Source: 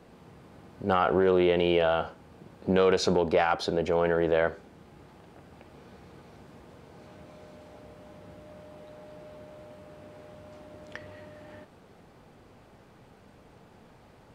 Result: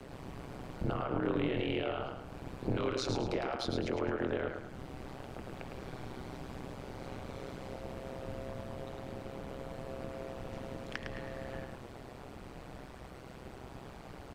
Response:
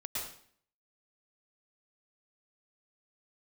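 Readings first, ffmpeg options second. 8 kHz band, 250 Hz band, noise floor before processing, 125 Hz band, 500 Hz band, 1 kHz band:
-6.0 dB, -6.0 dB, -56 dBFS, -2.5 dB, -11.0 dB, -10.5 dB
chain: -filter_complex "[0:a]acrossover=split=600|1300[s0][s1][s2];[s0]acompressor=threshold=0.0158:ratio=6[s3];[s3][s1][s2]amix=inputs=3:normalize=0,alimiter=limit=0.0708:level=0:latency=1:release=16,acrossover=split=330[s4][s5];[s5]acompressor=threshold=0.00398:ratio=2.5[s6];[s4][s6]amix=inputs=2:normalize=0,afreqshift=-70,tremolo=f=130:d=0.947,asplit=2[s7][s8];[s8]aecho=0:1:107|214|321|428:0.531|0.191|0.0688|0.0248[s9];[s7][s9]amix=inputs=2:normalize=0,volume=2.99"

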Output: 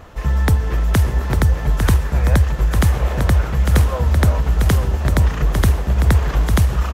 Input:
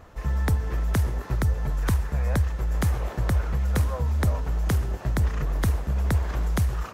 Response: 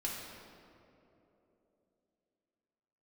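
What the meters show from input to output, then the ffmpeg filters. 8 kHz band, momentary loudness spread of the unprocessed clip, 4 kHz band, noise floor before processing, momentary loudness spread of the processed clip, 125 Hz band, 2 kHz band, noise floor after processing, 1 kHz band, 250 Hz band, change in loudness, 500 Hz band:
+9.0 dB, 2 LU, +11.0 dB, -40 dBFS, 2 LU, +8.5 dB, +9.5 dB, -24 dBFS, +9.0 dB, +9.0 dB, +9.0 dB, +9.0 dB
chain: -af "equalizer=f=3100:w=2.1:g=3.5,aecho=1:1:851:0.501,volume=2.51"

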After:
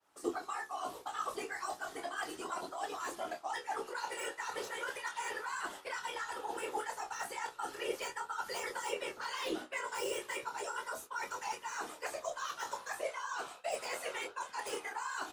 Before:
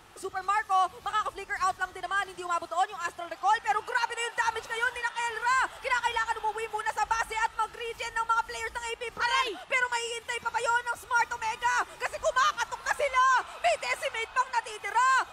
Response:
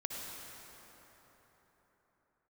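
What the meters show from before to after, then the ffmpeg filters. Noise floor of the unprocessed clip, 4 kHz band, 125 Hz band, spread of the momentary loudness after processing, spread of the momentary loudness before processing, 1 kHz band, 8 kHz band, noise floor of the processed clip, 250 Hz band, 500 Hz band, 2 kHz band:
-50 dBFS, -8.5 dB, no reading, 3 LU, 7 LU, -12.5 dB, -5.0 dB, -55 dBFS, +2.0 dB, -6.0 dB, -12.0 dB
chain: -filter_complex "[0:a]adynamicequalizer=threshold=0.00141:dfrequency=8400:dqfactor=3.2:tfrequency=8400:tqfactor=3.2:attack=5:release=100:ratio=0.375:range=2:mode=cutabove:tftype=bell,areverse,acompressor=threshold=0.0224:ratio=20,areverse,acrossover=split=180 2000:gain=0.1 1 0.251[s0][s1][s2];[s0][s1][s2]amix=inputs=3:normalize=0,bandreject=f=50:t=h:w=6,bandreject=f=100:t=h:w=6,bandreject=f=150:t=h:w=6,bandreject=f=200:t=h:w=6,bandreject=f=250:t=h:w=6,bandreject=f=300:t=h:w=6,bandreject=f=350:t=h:w=6,bandreject=f=400:t=h:w=6,bandreject=f=450:t=h:w=6,agate=range=0.0224:threshold=0.00708:ratio=3:detection=peak,asplit=2[s3][s4];[s4]adelay=26,volume=0.531[s5];[s3][s5]amix=inputs=2:normalize=0,aresample=32000,aresample=44100,acrossover=split=450|3000[s6][s7][s8];[s7]acompressor=threshold=0.00501:ratio=2.5[s9];[s6][s9][s8]amix=inputs=3:normalize=0,acrossover=split=4100[s10][s11];[s11]aeval=exprs='0.00501*sin(PI/2*3.16*val(0)/0.00501)':c=same[s12];[s10][s12]amix=inputs=2:normalize=0,afftfilt=real='hypot(re,im)*cos(2*PI*random(0))':imag='hypot(re,im)*sin(2*PI*random(1))':win_size=512:overlap=0.75,flanger=delay=9.8:depth=8.4:regen=56:speed=0.35:shape=triangular,volume=4.73"

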